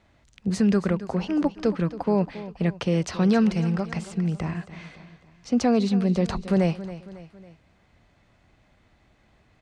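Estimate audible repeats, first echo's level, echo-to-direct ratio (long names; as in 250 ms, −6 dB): 3, −15.0 dB, −14.0 dB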